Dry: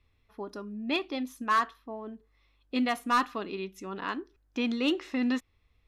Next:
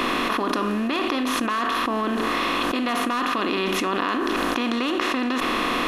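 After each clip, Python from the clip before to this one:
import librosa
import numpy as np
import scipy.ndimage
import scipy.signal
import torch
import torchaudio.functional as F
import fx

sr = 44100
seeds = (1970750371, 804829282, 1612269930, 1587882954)

y = fx.bin_compress(x, sr, power=0.4)
y = fx.env_flatten(y, sr, amount_pct=100)
y = y * 10.0 ** (-4.0 / 20.0)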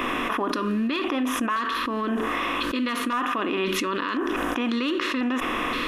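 y = fx.bin_expand(x, sr, power=1.5)
y = fx.filter_lfo_notch(y, sr, shape='square', hz=0.96, low_hz=750.0, high_hz=4300.0, q=1.7)
y = y * 10.0 ** (1.5 / 20.0)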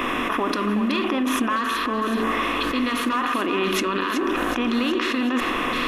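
y = fx.echo_split(x, sr, split_hz=360.0, low_ms=139, high_ms=374, feedback_pct=52, wet_db=-8)
y = y * 10.0 ** (2.0 / 20.0)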